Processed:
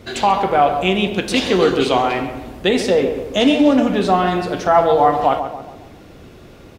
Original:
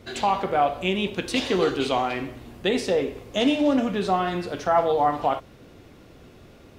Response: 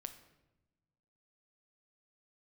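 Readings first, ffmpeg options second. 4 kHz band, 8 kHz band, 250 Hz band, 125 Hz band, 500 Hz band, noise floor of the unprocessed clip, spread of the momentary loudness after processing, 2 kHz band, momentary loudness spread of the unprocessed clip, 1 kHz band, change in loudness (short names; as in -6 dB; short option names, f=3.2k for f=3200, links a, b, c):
+7.0 dB, +7.0 dB, +8.0 dB, +7.5 dB, +8.0 dB, -50 dBFS, 7 LU, +7.5 dB, 7 LU, +7.5 dB, +7.5 dB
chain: -filter_complex "[0:a]asplit=2[a][b];[b]adelay=138,lowpass=f=1.6k:p=1,volume=-8dB,asplit=2[c][d];[d]adelay=138,lowpass=f=1.6k:p=1,volume=0.48,asplit=2[e][f];[f]adelay=138,lowpass=f=1.6k:p=1,volume=0.48,asplit=2[g][h];[h]adelay=138,lowpass=f=1.6k:p=1,volume=0.48,asplit=2[i][j];[j]adelay=138,lowpass=f=1.6k:p=1,volume=0.48,asplit=2[k][l];[l]adelay=138,lowpass=f=1.6k:p=1,volume=0.48[m];[a][c][e][g][i][k][m]amix=inputs=7:normalize=0,volume=7dB"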